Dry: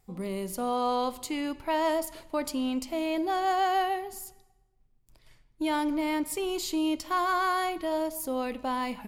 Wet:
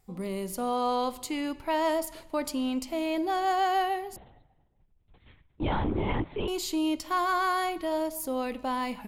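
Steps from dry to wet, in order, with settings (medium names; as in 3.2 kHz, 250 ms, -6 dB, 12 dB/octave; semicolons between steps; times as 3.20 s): 4.16–6.48 s: LPC vocoder at 8 kHz whisper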